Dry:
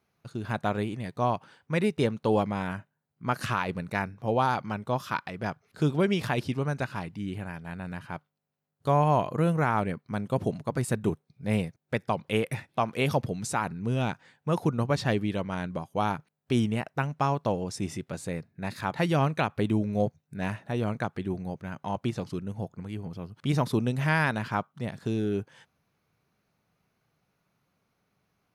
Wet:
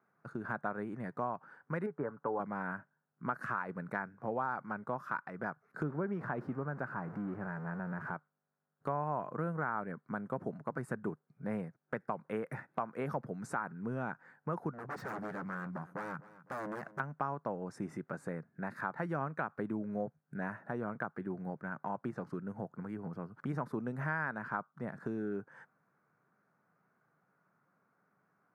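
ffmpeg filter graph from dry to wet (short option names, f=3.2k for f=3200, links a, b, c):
-filter_complex "[0:a]asettb=1/sr,asplit=3[a][b][c];[a]atrim=end=1.864[d];[b]atrim=start=1.86:end=2.4,asetpts=PTS-STARTPTS,afade=t=in:d=0.004:c=qsin,afade=t=out:st=0.536:d=0.004:c=qsin,lowpass=f=1.5k:w=0.5412,lowpass=f=1.5k:w=1.3066,tiltshelf=f=760:g=-5.5,aecho=1:1:7:0.41,atrim=end_sample=23814[e];[c]atrim=start=2.396[f];[d][e]acrossfade=d=0.004:c1=hsin:c2=qsin[g];[g][f]acrossfade=d=0.004:c1=qsin:c2=hsin,asettb=1/sr,asplit=3[h][i][j];[h]atrim=end=5.834[k];[i]atrim=start=5.83:end=8.14,asetpts=PTS-STARTPTS,afade=t=in:d=0.004:c=qsin,afade=t=out:st=2.306:d=0.004:c=qsin,aeval=exprs='val(0)+0.5*0.0178*sgn(val(0))':c=same,lowpass=f=1.2k:p=1[l];[j]atrim=start=8.136[m];[k][l]acrossfade=d=0.004:c1=hsin:c2=qsin[n];[n][m]acrossfade=d=0.004:c1=qsin:c2=hsin,asettb=1/sr,asplit=3[o][p][q];[o]atrim=end=14.714[r];[p]atrim=start=14.71:end=17,asetpts=PTS-STARTPTS,afade=t=in:d=0.004:c=qsin,afade=t=out:st=2.286:d=0.004:c=qsin,equalizer=f=680:t=o:w=1.9:g=-8,aeval=exprs='0.0251*(abs(mod(val(0)/0.0251+3,4)-2)-1)':c=same,aecho=1:1:253|506|759:0.106|0.0424|0.0169,atrim=end_sample=100989[s];[q]atrim=start=16.996[t];[r][s]acrossfade=d=0.004:c1=hsin:c2=qsin[u];[u][t]acrossfade=d=0.004:c1=qsin:c2=hsin,highpass=f=140:w=0.5412,highpass=f=140:w=1.3066,highshelf=f=2.2k:t=q:w=3:g=-13.5,acompressor=threshold=-36dB:ratio=2.5,volume=-1.5dB"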